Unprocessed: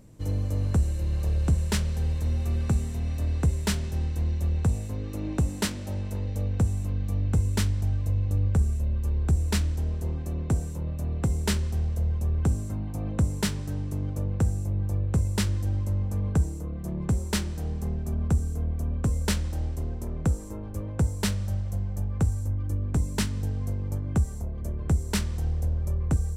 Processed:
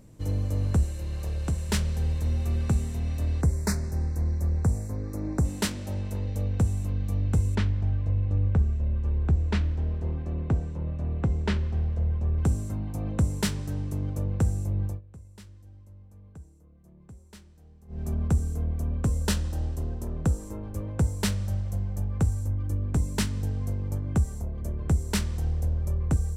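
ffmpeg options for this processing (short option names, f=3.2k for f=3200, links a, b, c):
-filter_complex "[0:a]asettb=1/sr,asplit=3[a][b][c];[a]atrim=end=0.854[d];[b]atrim=start=0.85:end=1.69,asetpts=PTS-STARTPTS,afade=t=in:d=0.004:c=qsin,afade=t=out:st=0.836:d=0.004:c=qsin,lowshelf=f=400:g=-5.5[e];[c]atrim=start=1.686[f];[d][e]acrossfade=d=0.004:c1=hsin:c2=qsin[g];[g][f]acrossfade=d=0.004:c1=qsin:c2=hsin,asettb=1/sr,asplit=3[h][i][j];[h]atrim=end=3.414[k];[i]atrim=start=3.41:end=5.45,asetpts=PTS-STARTPTS,afade=t=in:d=0.004:c=qsin,afade=t=out:st=2.036:d=0.004:c=qsin,asuperstop=centerf=3100:order=4:qfactor=1.2[l];[j]atrim=start=5.446[m];[k][l]acrossfade=d=0.004:c1=hsin:c2=qsin[n];[n][m]acrossfade=d=0.004:c1=qsin:c2=hsin,asettb=1/sr,asplit=3[o][p][q];[o]atrim=end=7.554[r];[p]atrim=start=7.55:end=12.38,asetpts=PTS-STARTPTS,afade=t=in:d=0.004:c=qsin,afade=t=out:st=4.826:d=0.004:c=qsin,lowpass=2.9k[s];[q]atrim=start=12.376[t];[r][s]acrossfade=d=0.004:c1=hsin:c2=qsin[u];[u][t]acrossfade=d=0.004:c1=qsin:c2=hsin,asettb=1/sr,asplit=3[v][w][x];[v]atrim=end=19.084[y];[w]atrim=start=19.08:end=20.43,asetpts=PTS-STARTPTS,afade=t=in:d=0.004:c=qsin,afade=t=out:st=1.346:d=0.004:c=qsin,bandreject=f=2.2k:w=7[z];[x]atrim=start=20.426[aa];[y][z]acrossfade=d=0.004:c1=hsin:c2=qsin[ab];[ab][aa]acrossfade=d=0.004:c1=qsin:c2=hsin,asplit=3[ac][ad][ae];[ac]atrim=end=15.01,asetpts=PTS-STARTPTS,afade=t=out:st=14.85:d=0.16:silence=0.0749894[af];[ad]atrim=start=15.01:end=17.88,asetpts=PTS-STARTPTS,volume=-22.5dB[ag];[ae]atrim=start=17.88,asetpts=PTS-STARTPTS,afade=t=in:d=0.16:silence=0.0749894[ah];[af][ag][ah]concat=n=3:v=0:a=1"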